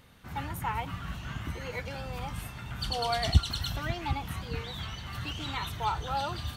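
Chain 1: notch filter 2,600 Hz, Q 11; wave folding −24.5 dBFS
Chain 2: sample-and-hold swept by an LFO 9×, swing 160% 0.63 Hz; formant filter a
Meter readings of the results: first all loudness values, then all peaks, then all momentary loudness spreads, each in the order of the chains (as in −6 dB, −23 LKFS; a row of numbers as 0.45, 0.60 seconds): −35.0, −44.0 LKFS; −24.5, −23.0 dBFS; 8, 18 LU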